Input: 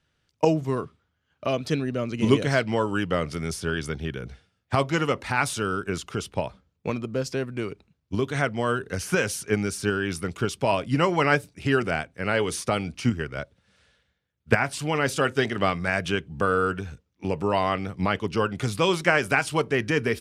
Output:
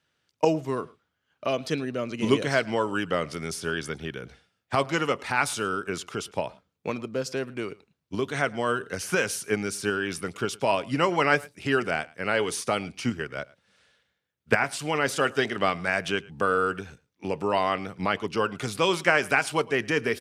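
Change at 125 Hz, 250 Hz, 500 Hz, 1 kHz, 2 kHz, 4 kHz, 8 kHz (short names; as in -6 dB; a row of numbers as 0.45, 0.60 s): -7.0, -3.5, -1.0, -0.5, 0.0, 0.0, 0.0 dB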